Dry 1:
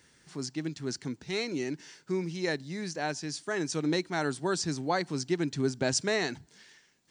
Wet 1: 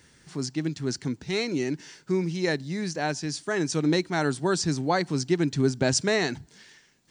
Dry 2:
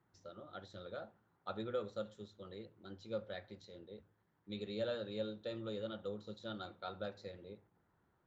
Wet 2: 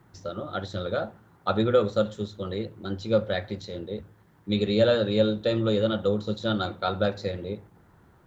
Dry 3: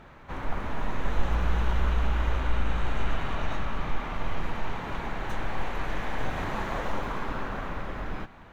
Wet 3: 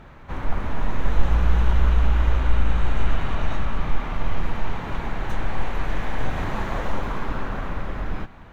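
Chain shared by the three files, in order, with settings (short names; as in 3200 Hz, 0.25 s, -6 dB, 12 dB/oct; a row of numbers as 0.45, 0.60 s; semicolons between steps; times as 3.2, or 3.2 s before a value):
low shelf 180 Hz +6 dB; match loudness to -27 LUFS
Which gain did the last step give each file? +4.0, +17.5, +2.0 dB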